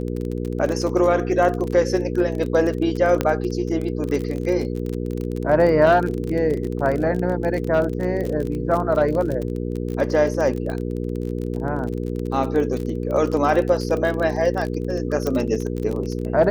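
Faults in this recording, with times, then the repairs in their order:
crackle 32/s -25 dBFS
hum 60 Hz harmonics 8 -26 dBFS
3.21 pop -6 dBFS
15.27 pop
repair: de-click; de-hum 60 Hz, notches 8

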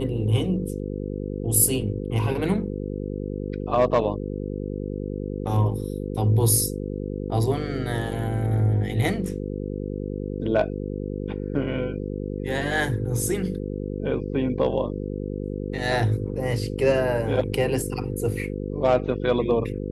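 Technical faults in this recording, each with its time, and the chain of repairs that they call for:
buzz 50 Hz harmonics 10 -30 dBFS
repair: de-hum 50 Hz, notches 10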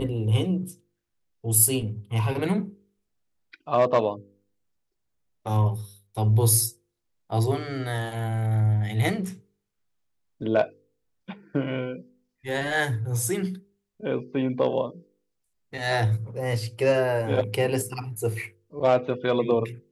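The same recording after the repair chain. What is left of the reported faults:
none

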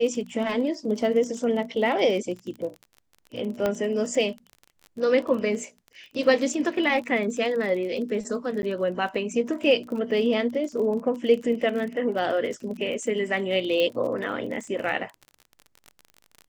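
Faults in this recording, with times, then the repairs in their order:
crackle 31/s -33 dBFS
3.66 pop -12 dBFS
8.62–8.63 gap 10 ms
13.8 pop -14 dBFS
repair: de-click; interpolate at 8.62, 10 ms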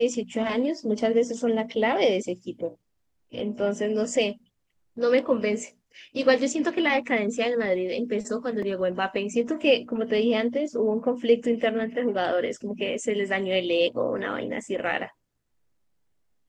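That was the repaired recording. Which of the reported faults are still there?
3.66 pop

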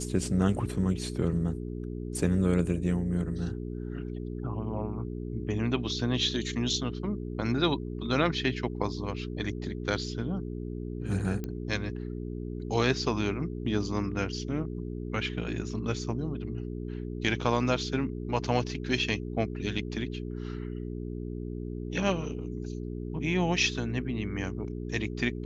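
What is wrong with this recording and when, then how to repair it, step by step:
hum 60 Hz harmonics 7 -36 dBFS
11.44 pop -22 dBFS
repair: de-click; de-hum 60 Hz, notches 7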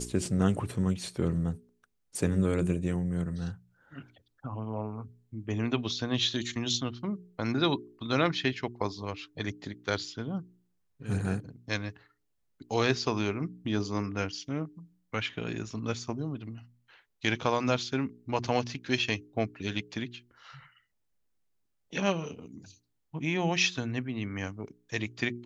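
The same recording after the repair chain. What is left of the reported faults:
none

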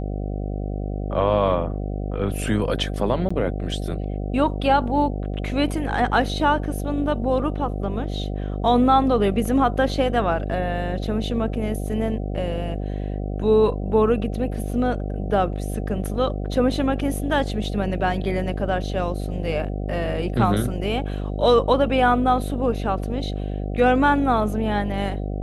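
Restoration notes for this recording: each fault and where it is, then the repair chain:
buzz 50 Hz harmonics 15 -27 dBFS
3.29–3.31 gap 15 ms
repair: de-hum 50 Hz, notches 15; interpolate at 3.29, 15 ms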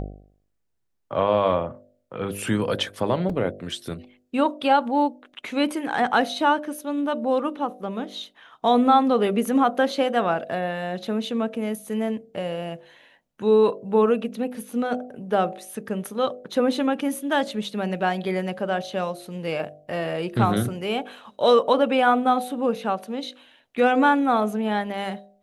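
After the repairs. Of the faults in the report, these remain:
none

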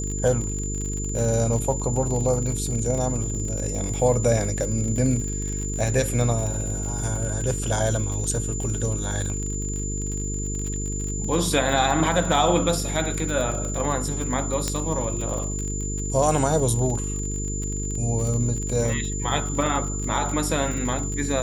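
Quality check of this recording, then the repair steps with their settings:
buzz 50 Hz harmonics 9 -29 dBFS
crackle 41/s -28 dBFS
tone 7100 Hz -31 dBFS
14.68 pop -10 dBFS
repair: de-click; notch 7100 Hz, Q 30; de-hum 50 Hz, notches 9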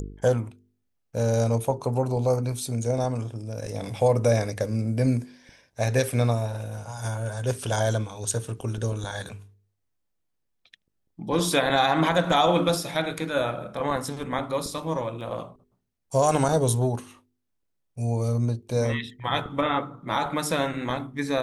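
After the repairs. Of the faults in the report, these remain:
none

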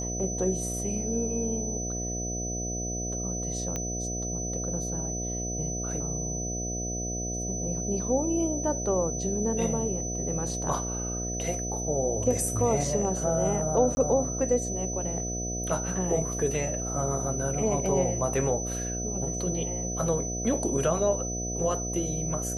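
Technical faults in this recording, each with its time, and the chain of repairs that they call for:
buzz 60 Hz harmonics 12 -34 dBFS
tone 6000 Hz -33 dBFS
3.76 pop -17 dBFS
13.95–13.97 gap 20 ms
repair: de-click; de-hum 60 Hz, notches 12; notch 6000 Hz, Q 30; interpolate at 13.95, 20 ms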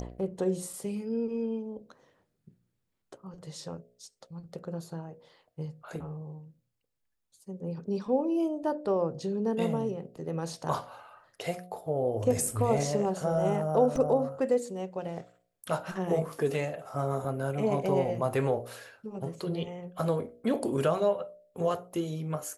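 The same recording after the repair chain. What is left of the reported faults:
none

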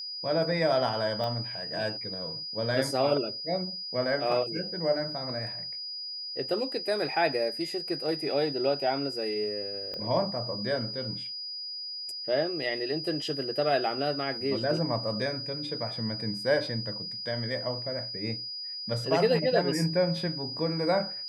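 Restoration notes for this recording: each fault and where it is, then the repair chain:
tone 4900 Hz -35 dBFS
1.24 pop -22 dBFS
9.94 pop -25 dBFS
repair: de-click; notch 4900 Hz, Q 30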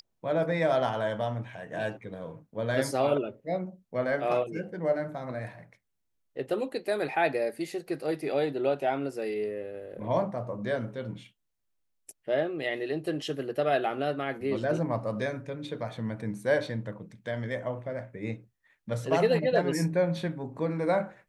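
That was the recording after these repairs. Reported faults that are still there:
1.24 pop
9.94 pop

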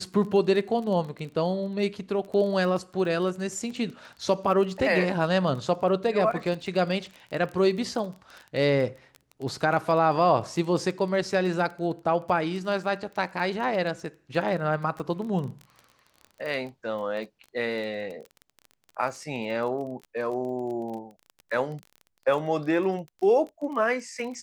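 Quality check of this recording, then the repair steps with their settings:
crackle 22/s -34 dBFS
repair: de-click

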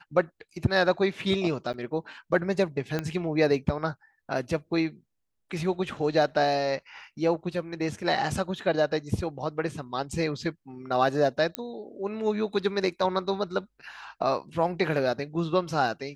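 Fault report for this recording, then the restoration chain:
1.73–1.74 gap 9.4 ms
2.99 pop -15 dBFS
11.55 pop -12 dBFS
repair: de-click; interpolate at 1.73, 9.4 ms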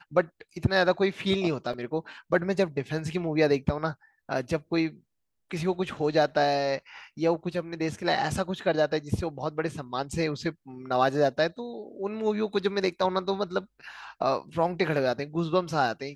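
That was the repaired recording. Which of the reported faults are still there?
2.99 pop

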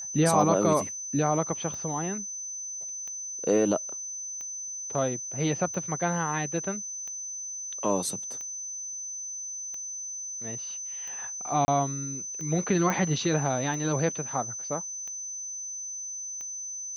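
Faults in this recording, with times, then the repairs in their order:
tick 45 rpm
tone 6100 Hz -34 dBFS
11.65–11.68 gap 30 ms
12.9 pop -14 dBFS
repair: de-click; notch 6100 Hz, Q 30; interpolate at 11.65, 30 ms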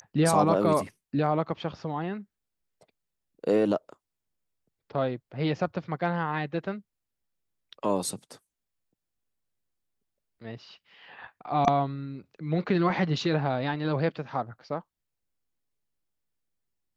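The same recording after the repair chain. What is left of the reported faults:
none

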